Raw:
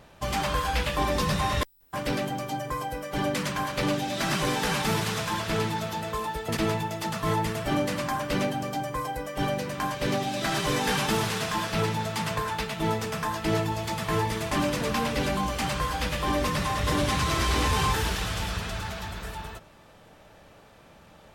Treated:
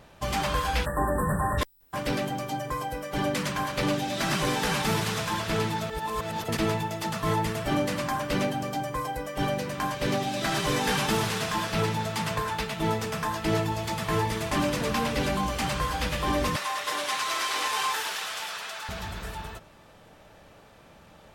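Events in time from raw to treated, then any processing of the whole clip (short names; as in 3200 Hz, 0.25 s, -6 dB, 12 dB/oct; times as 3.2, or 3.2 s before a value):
0.85–1.58 spectral delete 1900–7500 Hz
5.9–6.44 reverse
16.56–18.89 HPF 730 Hz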